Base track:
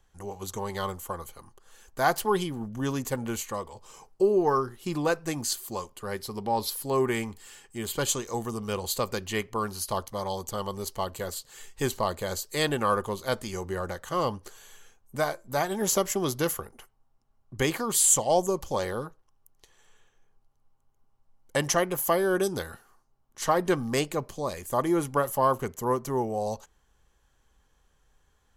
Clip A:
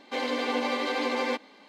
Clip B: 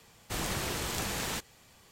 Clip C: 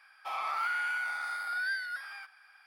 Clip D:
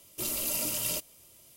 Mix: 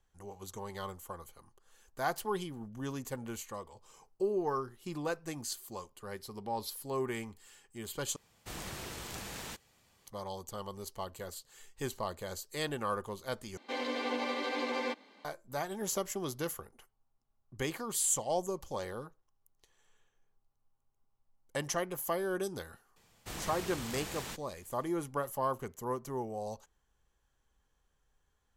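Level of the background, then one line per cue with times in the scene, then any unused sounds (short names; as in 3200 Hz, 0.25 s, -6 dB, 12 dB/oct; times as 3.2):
base track -9.5 dB
8.16 replace with B -9 dB
13.57 replace with A -6.5 dB
22.96 add B -8 dB
not used: C, D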